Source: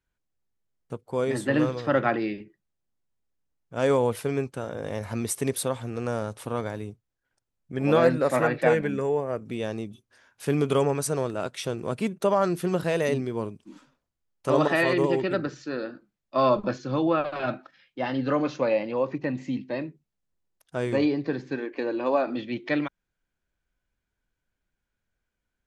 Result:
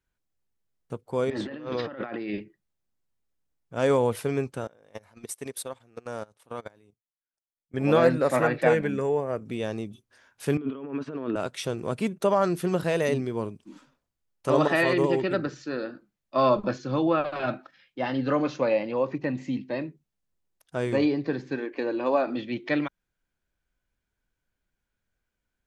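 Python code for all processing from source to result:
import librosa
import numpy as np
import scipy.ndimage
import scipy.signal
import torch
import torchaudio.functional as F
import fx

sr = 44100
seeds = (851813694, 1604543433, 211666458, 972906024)

y = fx.chain(x, sr, fx.lowpass(hz=4800.0, slope=24),
    fx.peak_eq(hz=130.0, db=-9.5, octaves=0.42),
    fx.over_compress(threshold_db=-34.0, ratio=-1.0), at=(1.3, 2.4))
y = fx.chain(y, sr, fx.low_shelf(hz=240.0, db=-9.5),
    fx.level_steps(step_db=11),
    fx.upward_expand(threshold_db=-42.0, expansion=2.5), at=(4.67, 7.74))
y = fx.chain(y, sr, fx.over_compress(threshold_db=-33.0, ratio=-1.0),
    fx.cabinet(low_hz=220.0, low_slope=12, high_hz=3000.0, hz=(270.0, 520.0, 770.0, 2100.0), db=(10, -5, -8, -6)), at=(10.57, 11.36))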